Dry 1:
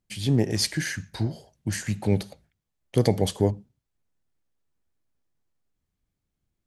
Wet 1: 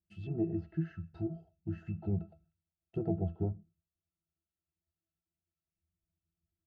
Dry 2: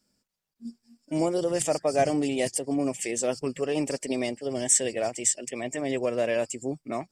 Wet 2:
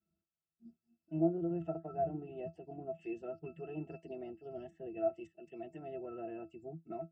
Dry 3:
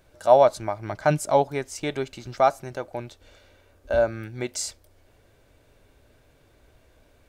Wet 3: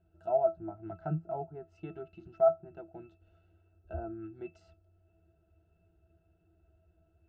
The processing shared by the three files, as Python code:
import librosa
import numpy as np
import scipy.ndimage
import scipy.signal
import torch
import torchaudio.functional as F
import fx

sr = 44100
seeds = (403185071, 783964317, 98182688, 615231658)

y = fx.env_lowpass_down(x, sr, base_hz=1300.0, full_db=-21.5)
y = fx.octave_resonator(y, sr, note='E', decay_s=0.14)